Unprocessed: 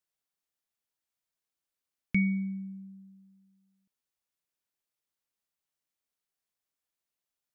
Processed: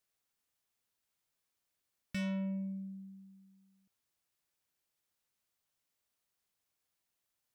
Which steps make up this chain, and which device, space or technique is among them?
open-reel tape (soft clipping −37 dBFS, distortion −4 dB; parametric band 95 Hz +5 dB 1.01 octaves; white noise bed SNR 43 dB)
level +2 dB

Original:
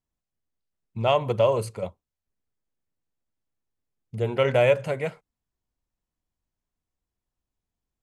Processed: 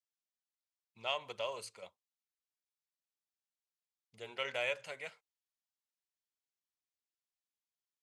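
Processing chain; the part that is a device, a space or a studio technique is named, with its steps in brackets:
piezo pickup straight into a mixer (low-pass filter 5,000 Hz 12 dB per octave; first difference)
level +2 dB

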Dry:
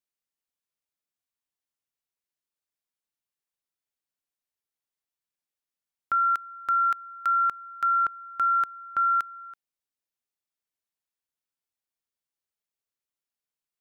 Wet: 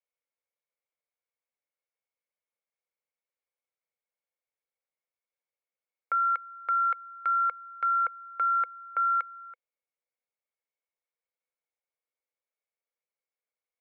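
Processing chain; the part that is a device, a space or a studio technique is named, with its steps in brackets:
tin-can telephone (band-pass filter 620–2,000 Hz; hollow resonant body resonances 500/2,200 Hz, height 15 dB, ringing for 25 ms)
level −2 dB

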